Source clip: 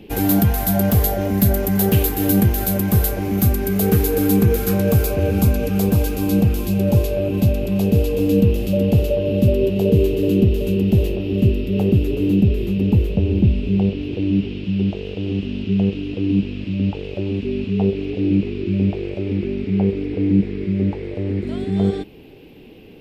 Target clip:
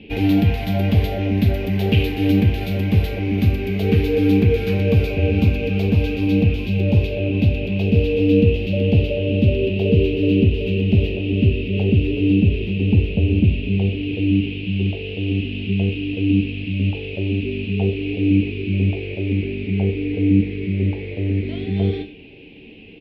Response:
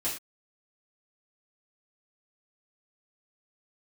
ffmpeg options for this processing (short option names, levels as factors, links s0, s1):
-filter_complex "[0:a]firequalizer=gain_entry='entry(320,0);entry(1300,-10);entry(2400,10);entry(7600,-24)':delay=0.05:min_phase=1,asplit=2[s0][s1];[1:a]atrim=start_sample=2205[s2];[s1][s2]afir=irnorm=-1:irlink=0,volume=0.376[s3];[s0][s3]amix=inputs=2:normalize=0,volume=0.668"